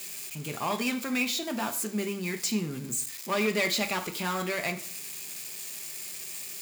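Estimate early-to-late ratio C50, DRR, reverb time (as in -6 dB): 13.5 dB, 6.0 dB, 0.50 s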